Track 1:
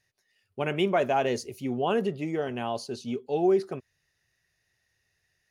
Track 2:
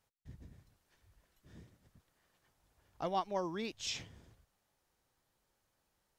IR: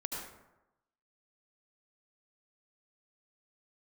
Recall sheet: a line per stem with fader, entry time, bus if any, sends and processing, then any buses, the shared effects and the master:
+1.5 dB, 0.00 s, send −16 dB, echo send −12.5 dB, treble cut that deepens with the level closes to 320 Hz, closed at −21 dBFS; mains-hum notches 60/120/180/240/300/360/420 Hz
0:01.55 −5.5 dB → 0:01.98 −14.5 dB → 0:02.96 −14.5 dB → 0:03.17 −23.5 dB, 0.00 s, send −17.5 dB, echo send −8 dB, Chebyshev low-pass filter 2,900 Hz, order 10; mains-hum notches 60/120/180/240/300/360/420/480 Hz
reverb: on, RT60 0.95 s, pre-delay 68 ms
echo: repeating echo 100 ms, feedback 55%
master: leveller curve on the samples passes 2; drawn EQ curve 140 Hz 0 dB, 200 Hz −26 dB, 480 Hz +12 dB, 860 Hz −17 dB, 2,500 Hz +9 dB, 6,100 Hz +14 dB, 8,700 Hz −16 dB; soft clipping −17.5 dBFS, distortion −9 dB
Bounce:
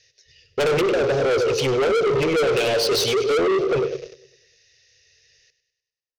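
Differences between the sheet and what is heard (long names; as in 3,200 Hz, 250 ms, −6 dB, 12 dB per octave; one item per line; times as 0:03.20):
stem 1 +1.5 dB → +11.5 dB
stem 2: send off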